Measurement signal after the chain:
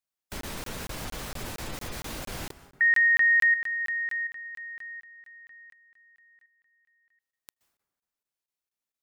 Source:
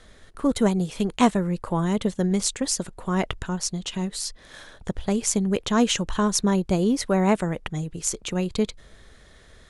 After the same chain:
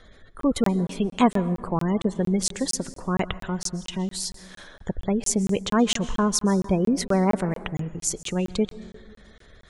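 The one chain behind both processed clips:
gate on every frequency bin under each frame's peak −30 dB strong
dense smooth reverb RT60 1.5 s, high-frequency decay 0.45×, pre-delay 115 ms, DRR 15.5 dB
regular buffer underruns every 0.23 s, samples 1,024, zero, from 0:00.41

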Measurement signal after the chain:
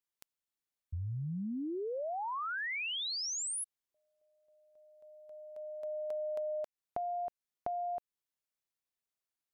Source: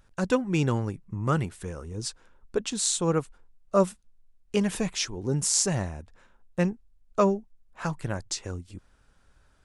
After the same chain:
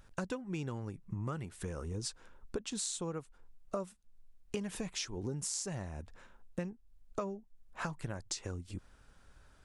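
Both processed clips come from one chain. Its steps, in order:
downward compressor 12 to 1, threshold −36 dBFS
level +1 dB

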